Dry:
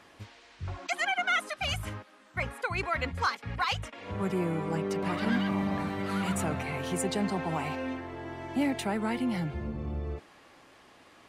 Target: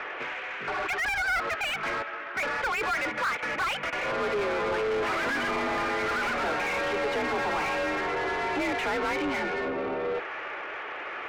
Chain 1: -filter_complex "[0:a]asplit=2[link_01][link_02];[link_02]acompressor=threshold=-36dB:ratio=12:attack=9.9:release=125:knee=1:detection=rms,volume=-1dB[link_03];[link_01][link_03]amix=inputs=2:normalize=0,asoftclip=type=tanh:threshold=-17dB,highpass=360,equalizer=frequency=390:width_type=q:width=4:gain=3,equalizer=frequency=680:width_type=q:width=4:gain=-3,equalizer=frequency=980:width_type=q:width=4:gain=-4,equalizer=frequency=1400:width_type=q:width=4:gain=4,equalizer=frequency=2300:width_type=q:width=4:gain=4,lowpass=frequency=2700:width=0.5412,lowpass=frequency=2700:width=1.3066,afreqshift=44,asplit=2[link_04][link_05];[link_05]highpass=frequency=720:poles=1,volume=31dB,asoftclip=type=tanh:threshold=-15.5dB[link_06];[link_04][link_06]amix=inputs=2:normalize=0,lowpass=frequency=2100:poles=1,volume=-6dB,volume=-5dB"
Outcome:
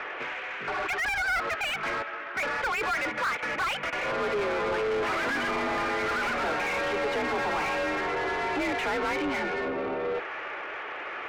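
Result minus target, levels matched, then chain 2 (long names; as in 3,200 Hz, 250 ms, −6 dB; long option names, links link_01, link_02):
soft clipping: distortion +15 dB
-filter_complex "[0:a]asplit=2[link_01][link_02];[link_02]acompressor=threshold=-36dB:ratio=12:attack=9.9:release=125:knee=1:detection=rms,volume=-1dB[link_03];[link_01][link_03]amix=inputs=2:normalize=0,asoftclip=type=tanh:threshold=-8.5dB,highpass=360,equalizer=frequency=390:width_type=q:width=4:gain=3,equalizer=frequency=680:width_type=q:width=4:gain=-3,equalizer=frequency=980:width_type=q:width=4:gain=-4,equalizer=frequency=1400:width_type=q:width=4:gain=4,equalizer=frequency=2300:width_type=q:width=4:gain=4,lowpass=frequency=2700:width=0.5412,lowpass=frequency=2700:width=1.3066,afreqshift=44,asplit=2[link_04][link_05];[link_05]highpass=frequency=720:poles=1,volume=31dB,asoftclip=type=tanh:threshold=-15.5dB[link_06];[link_04][link_06]amix=inputs=2:normalize=0,lowpass=frequency=2100:poles=1,volume=-6dB,volume=-5dB"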